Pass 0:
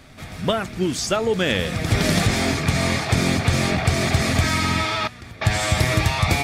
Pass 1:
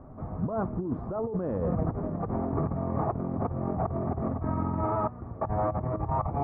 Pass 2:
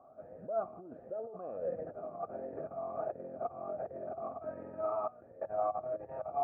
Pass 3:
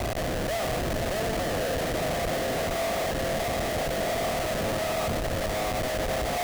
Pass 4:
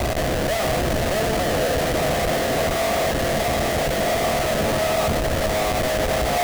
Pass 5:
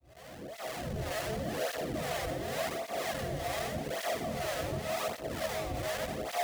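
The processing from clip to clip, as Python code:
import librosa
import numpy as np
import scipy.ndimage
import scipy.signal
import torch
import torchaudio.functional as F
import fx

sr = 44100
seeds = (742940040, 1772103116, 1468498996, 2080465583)

y1 = scipy.signal.sosfilt(scipy.signal.cheby1(4, 1.0, 1100.0, 'lowpass', fs=sr, output='sos'), x)
y1 = fx.over_compress(y1, sr, threshold_db=-27.0, ratio=-1.0)
y1 = F.gain(torch.from_numpy(y1), -3.0).numpy()
y2 = fx.vowel_sweep(y1, sr, vowels='a-e', hz=1.4)
y2 = F.gain(torch.from_numpy(y2), 2.0).numpy()
y3 = fx.bin_compress(y2, sr, power=0.4)
y3 = fx.schmitt(y3, sr, flips_db=-37.0)
y3 = y3 + 10.0 ** (-8.0 / 20.0) * np.pad(y3, (int(460 * sr / 1000.0), 0))[:len(y3)]
y3 = F.gain(torch.from_numpy(y3), 4.0).numpy()
y4 = fx.doubler(y3, sr, ms=14.0, db=-10.5)
y4 = F.gain(torch.from_numpy(y4), 6.5).numpy()
y5 = fx.fade_in_head(y4, sr, length_s=1.12)
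y5 = fx.harmonic_tremolo(y5, sr, hz=2.1, depth_pct=70, crossover_hz=510.0)
y5 = fx.flanger_cancel(y5, sr, hz=0.87, depth_ms=5.2)
y5 = F.gain(torch.from_numpy(y5), -7.5).numpy()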